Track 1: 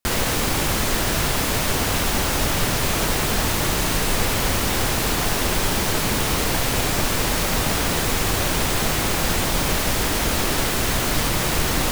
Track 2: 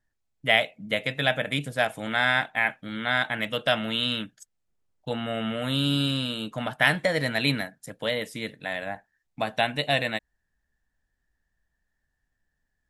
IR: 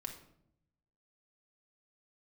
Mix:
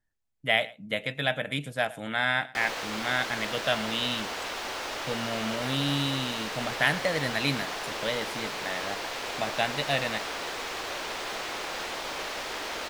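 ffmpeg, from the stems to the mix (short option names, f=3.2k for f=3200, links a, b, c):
-filter_complex "[0:a]acrossover=split=360 5900:gain=0.0794 1 0.158[a][b][c];[a][b][c]amix=inputs=3:normalize=0,adelay=2500,volume=-9dB[d];[1:a]volume=-3.5dB,asplit=2[e][f];[f]volume=-21dB,aecho=0:1:112:1[g];[d][e][g]amix=inputs=3:normalize=0"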